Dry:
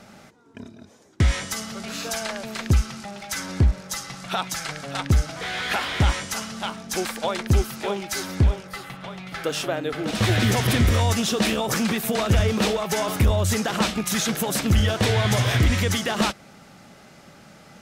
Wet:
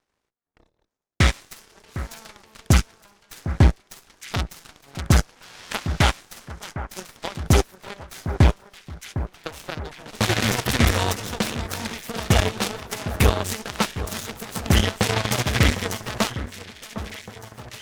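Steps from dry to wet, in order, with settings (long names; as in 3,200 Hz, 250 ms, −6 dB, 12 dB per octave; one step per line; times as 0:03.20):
harmonic generator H 3 −8 dB, 5 −28 dB, 8 −31 dB, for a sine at −11 dBFS
delay that swaps between a low-pass and a high-pass 756 ms, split 1,700 Hz, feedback 72%, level −12 dB
level +4 dB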